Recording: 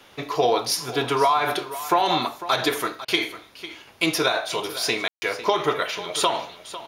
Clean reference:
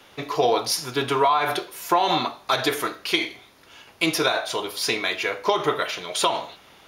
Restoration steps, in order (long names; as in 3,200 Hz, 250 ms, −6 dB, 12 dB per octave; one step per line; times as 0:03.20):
ambience match 0:05.08–0:05.22
repair the gap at 0:03.05, 30 ms
echo removal 500 ms −14.5 dB